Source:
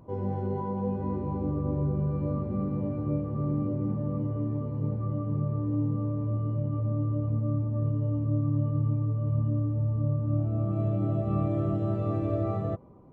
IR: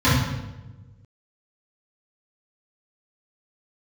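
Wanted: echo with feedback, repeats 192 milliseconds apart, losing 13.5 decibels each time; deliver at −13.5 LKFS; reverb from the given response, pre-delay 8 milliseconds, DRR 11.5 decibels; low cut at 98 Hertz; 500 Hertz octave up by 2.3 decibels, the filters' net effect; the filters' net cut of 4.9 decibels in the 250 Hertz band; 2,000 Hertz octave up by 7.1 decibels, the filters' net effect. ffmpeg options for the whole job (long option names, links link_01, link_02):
-filter_complex "[0:a]highpass=98,equalizer=frequency=250:width_type=o:gain=-8.5,equalizer=frequency=500:width_type=o:gain=4.5,equalizer=frequency=2000:width_type=o:gain=9,aecho=1:1:192|384:0.211|0.0444,asplit=2[link_01][link_02];[1:a]atrim=start_sample=2205,adelay=8[link_03];[link_02][link_03]afir=irnorm=-1:irlink=0,volume=-33dB[link_04];[link_01][link_04]amix=inputs=2:normalize=0,volume=14.5dB"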